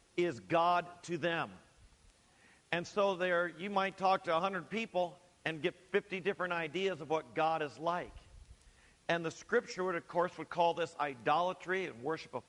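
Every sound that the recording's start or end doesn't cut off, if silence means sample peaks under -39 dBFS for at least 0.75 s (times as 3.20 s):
2.73–8.05 s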